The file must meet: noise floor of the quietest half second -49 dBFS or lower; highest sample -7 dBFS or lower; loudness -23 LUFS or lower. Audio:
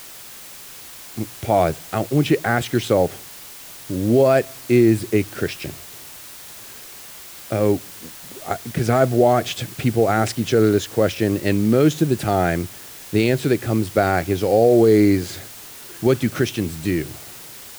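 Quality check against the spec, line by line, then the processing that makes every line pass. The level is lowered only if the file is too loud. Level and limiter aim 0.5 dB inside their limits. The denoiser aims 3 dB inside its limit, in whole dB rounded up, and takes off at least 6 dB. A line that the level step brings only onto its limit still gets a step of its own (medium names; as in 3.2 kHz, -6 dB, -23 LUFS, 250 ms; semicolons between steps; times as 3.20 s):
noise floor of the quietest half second -39 dBFS: fail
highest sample -5.0 dBFS: fail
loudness -19.5 LUFS: fail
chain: noise reduction 9 dB, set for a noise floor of -39 dBFS; trim -4 dB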